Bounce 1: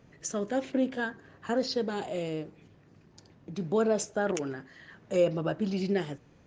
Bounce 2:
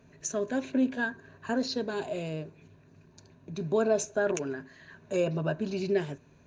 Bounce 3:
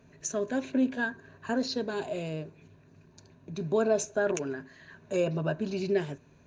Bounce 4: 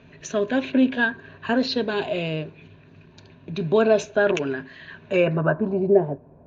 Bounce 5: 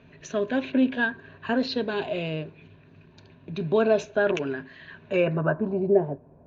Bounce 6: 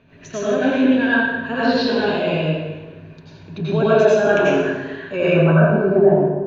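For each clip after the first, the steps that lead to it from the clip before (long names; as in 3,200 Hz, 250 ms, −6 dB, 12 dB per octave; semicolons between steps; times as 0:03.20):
EQ curve with evenly spaced ripples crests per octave 1.5, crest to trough 9 dB; level −1 dB
no processing that can be heard
low-pass filter sweep 3,200 Hz → 710 Hz, 0:05.06–0:05.82; level +7.5 dB
high-frequency loss of the air 61 metres; level −3 dB
dense smooth reverb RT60 1.3 s, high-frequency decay 0.75×, pre-delay 75 ms, DRR −10 dB; level −1 dB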